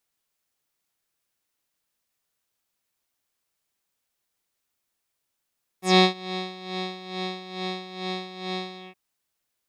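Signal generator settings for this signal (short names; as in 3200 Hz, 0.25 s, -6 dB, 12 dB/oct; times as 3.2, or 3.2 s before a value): synth patch with tremolo F#4, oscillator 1 square, oscillator 2 square, interval +12 st, detune 11 cents, oscillator 2 level -3 dB, sub -1 dB, filter lowpass, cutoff 2600 Hz, Q 4.3, filter envelope 2.5 oct, filter decay 0.10 s, filter sustain 25%, attack 0.227 s, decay 0.09 s, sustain -18.5 dB, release 0.18 s, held 2.94 s, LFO 2.3 Hz, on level 12 dB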